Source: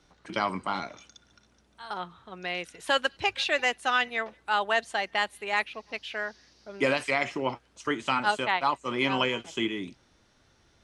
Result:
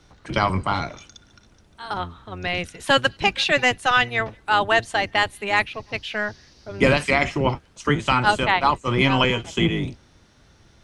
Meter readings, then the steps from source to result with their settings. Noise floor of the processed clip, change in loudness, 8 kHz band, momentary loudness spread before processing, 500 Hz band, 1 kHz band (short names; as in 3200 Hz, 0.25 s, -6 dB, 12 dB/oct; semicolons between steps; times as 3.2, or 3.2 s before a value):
-55 dBFS, +7.5 dB, +7.0 dB, 12 LU, +7.0 dB, +7.0 dB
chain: octaver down 1 oct, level +3 dB; gain +7 dB